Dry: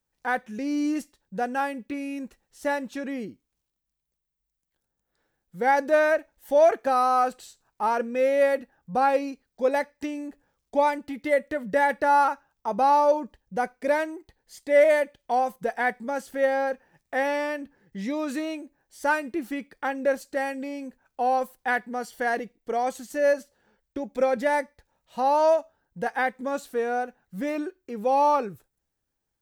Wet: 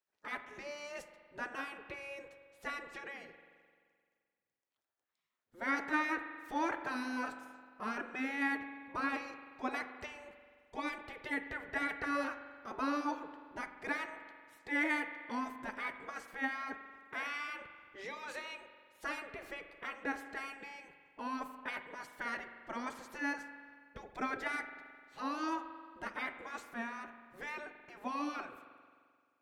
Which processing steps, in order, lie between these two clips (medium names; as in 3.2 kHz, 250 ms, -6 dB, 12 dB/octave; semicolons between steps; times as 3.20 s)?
low-pass 1.9 kHz 6 dB/octave; spectral gate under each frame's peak -15 dB weak; reverberation RT60 1.9 s, pre-delay 43 ms, DRR 9 dB